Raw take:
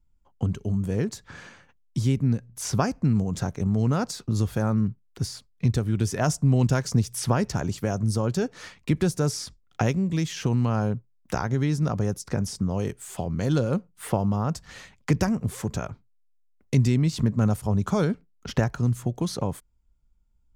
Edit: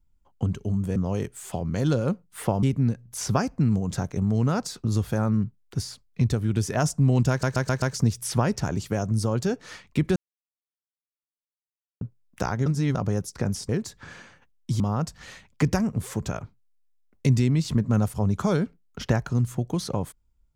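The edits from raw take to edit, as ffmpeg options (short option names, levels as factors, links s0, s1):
-filter_complex "[0:a]asplit=13[s0][s1][s2][s3][s4][s5][s6][s7][s8][s9][s10][s11][s12];[s0]atrim=end=0.962[s13];[s1]atrim=start=12.608:end=14.282[s14];[s2]atrim=start=2.068:end=6.872[s15];[s3]atrim=start=6.738:end=6.872[s16];[s4]atrim=start=6.738:end=6.872[s17];[s5]atrim=start=6.738:end=6.872[s18];[s6]atrim=start=6.738:end=9.08,asetpts=PTS-STARTPTS,afade=t=out:st=2.338:d=0.004:c=hsin[s19];[s7]atrim=start=9.08:end=10.93,asetpts=PTS-STARTPTS,volume=0[s20];[s8]atrim=start=10.93:end=11.582,asetpts=PTS-STARTPTS,afade=t=in:d=0.004:c=hsin[s21];[s9]atrim=start=11.578:end=11.872,asetpts=PTS-STARTPTS,areverse[s22];[s10]atrim=start=11.868:end=12.612[s23];[s11]atrim=start=0.958:end=2.072[s24];[s12]atrim=start=14.278[s25];[s13][s14]acrossfade=d=0.004:c1=hsin:c2=hsin[s26];[s26][s15]acrossfade=d=0.004:c1=hsin:c2=hsin[s27];[s27][s16]acrossfade=d=0.004:c1=hsin:c2=hsin[s28];[s28][s17]acrossfade=d=0.004:c1=hsin:c2=hsin[s29];[s29][s18]acrossfade=d=0.004:c1=hsin:c2=hsin[s30];[s19][s20][s21]concat=n=3:v=0:a=1[s31];[s30][s31]acrossfade=d=0.004:c1=hsin:c2=hsin[s32];[s32][s22]acrossfade=d=0.004:c1=hsin:c2=hsin[s33];[s33][s23]acrossfade=d=0.004:c1=hsin:c2=hsin[s34];[s34][s24]acrossfade=d=0.004:c1=hsin:c2=hsin[s35];[s35][s25]acrossfade=d=0.004:c1=hsin:c2=hsin"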